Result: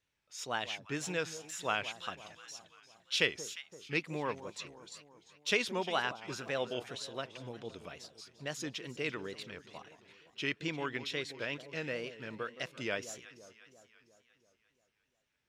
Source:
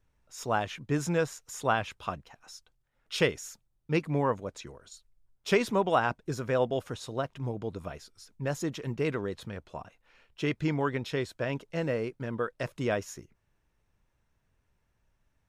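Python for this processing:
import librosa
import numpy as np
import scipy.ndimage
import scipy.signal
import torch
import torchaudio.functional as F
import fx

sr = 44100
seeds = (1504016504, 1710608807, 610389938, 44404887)

y = fx.weighting(x, sr, curve='D')
y = fx.echo_alternate(y, sr, ms=173, hz=1100.0, feedback_pct=72, wet_db=-13.0)
y = fx.wow_flutter(y, sr, seeds[0], rate_hz=2.1, depth_cents=96.0)
y = F.gain(torch.from_numpy(y), -8.5).numpy()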